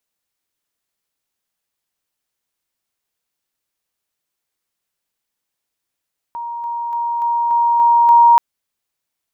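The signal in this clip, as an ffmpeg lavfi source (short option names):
-f lavfi -i "aevalsrc='pow(10,(-23.5+3*floor(t/0.29))/20)*sin(2*PI*941*t)':d=2.03:s=44100"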